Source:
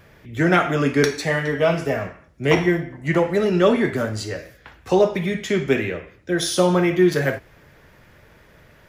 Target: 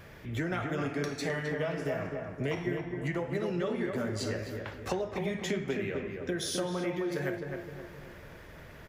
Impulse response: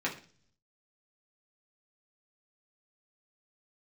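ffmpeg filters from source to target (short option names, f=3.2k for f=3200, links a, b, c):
-filter_complex "[0:a]acompressor=threshold=-32dB:ratio=6,asplit=2[a][b];[b]adelay=260,lowpass=f=1.7k:p=1,volume=-4dB,asplit=2[c][d];[d]adelay=260,lowpass=f=1.7k:p=1,volume=0.49,asplit=2[e][f];[f]adelay=260,lowpass=f=1.7k:p=1,volume=0.49,asplit=2[g][h];[h]adelay=260,lowpass=f=1.7k:p=1,volume=0.49,asplit=2[i][j];[j]adelay=260,lowpass=f=1.7k:p=1,volume=0.49,asplit=2[k][l];[l]adelay=260,lowpass=f=1.7k:p=1,volume=0.49[m];[a][c][e][g][i][k][m]amix=inputs=7:normalize=0"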